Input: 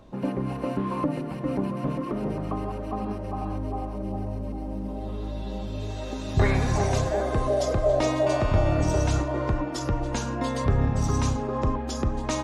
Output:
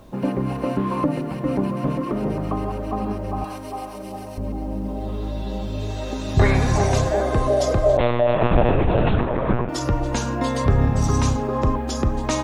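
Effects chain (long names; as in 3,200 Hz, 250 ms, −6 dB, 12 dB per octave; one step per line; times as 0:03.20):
0:03.44–0:04.38: spectral tilt +4 dB per octave
bit reduction 11 bits
0:07.97–0:09.69: one-pitch LPC vocoder at 8 kHz 120 Hz
level +5 dB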